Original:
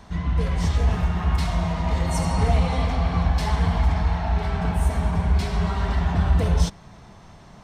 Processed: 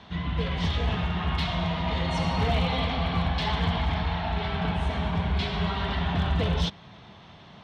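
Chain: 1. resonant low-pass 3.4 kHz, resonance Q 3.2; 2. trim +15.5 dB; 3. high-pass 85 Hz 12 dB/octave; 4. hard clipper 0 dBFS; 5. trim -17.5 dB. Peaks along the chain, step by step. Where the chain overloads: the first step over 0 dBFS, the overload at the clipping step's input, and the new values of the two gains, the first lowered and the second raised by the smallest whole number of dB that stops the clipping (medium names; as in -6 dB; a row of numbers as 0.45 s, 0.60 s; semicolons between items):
-8.5 dBFS, +7.0 dBFS, +5.0 dBFS, 0.0 dBFS, -17.5 dBFS; step 2, 5.0 dB; step 2 +10.5 dB, step 5 -12.5 dB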